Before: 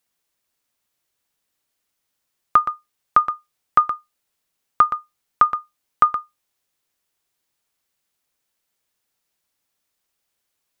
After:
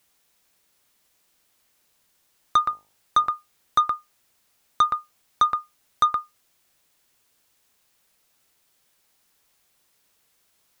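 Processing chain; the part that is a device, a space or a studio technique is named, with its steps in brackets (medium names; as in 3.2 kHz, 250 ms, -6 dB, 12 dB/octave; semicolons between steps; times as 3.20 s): open-reel tape (saturation -12 dBFS, distortion -10 dB; peaking EQ 85 Hz +5 dB 0.77 oct; white noise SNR 37 dB); 2.66–3.30 s: de-hum 51.53 Hz, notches 18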